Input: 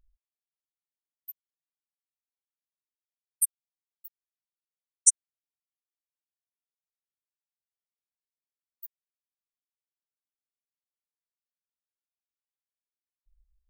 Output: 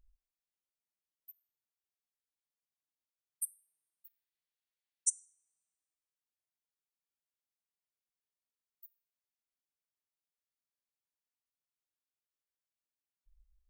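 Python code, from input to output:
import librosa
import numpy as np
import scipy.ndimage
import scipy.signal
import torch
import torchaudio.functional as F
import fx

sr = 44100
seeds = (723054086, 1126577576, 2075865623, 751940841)

y = fx.band_shelf(x, sr, hz=2700.0, db=8.0, octaves=1.7, at=(4.06, 5.08))
y = fx.hpss(y, sr, part='percussive', gain_db=-12)
y = fx.rev_double_slope(y, sr, seeds[0], early_s=0.46, late_s=1.6, knee_db=-24, drr_db=19.0)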